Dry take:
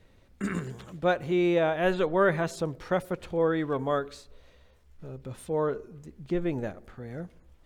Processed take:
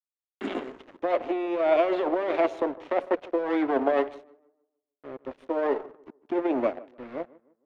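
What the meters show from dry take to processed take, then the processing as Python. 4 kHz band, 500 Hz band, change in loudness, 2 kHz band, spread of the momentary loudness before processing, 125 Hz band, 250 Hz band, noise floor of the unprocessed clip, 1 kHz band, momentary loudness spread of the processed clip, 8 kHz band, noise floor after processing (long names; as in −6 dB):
−2.5 dB, +2.0 dB, +1.0 dB, −3.0 dB, 17 LU, below −20 dB, +0.5 dB, −59 dBFS, +2.5 dB, 17 LU, below −15 dB, below −85 dBFS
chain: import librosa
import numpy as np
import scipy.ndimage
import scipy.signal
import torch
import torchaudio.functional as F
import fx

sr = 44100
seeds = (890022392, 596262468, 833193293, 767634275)

p1 = fx.lower_of_two(x, sr, delay_ms=0.32)
p2 = scipy.signal.sosfilt(scipy.signal.butter(12, 240.0, 'highpass', fs=sr, output='sos'), p1)
p3 = fx.over_compress(p2, sr, threshold_db=-30.0, ratio=-1.0)
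p4 = np.sign(p3) * np.maximum(np.abs(p3) - 10.0 ** (-46.0 / 20.0), 0.0)
p5 = scipy.signal.sosfilt(scipy.signal.butter(2, 2300.0, 'lowpass', fs=sr, output='sos'), p4)
p6 = p5 + fx.echo_tape(p5, sr, ms=153, feedback_pct=41, wet_db=-17.0, lp_hz=1200.0, drive_db=22.0, wow_cents=34, dry=0)
p7 = fx.dynamic_eq(p6, sr, hz=670.0, q=2.0, threshold_db=-49.0, ratio=4.0, max_db=8)
p8 = fx.notch(p7, sr, hz=470.0, q=12.0)
y = F.gain(torch.from_numpy(p8), 5.0).numpy()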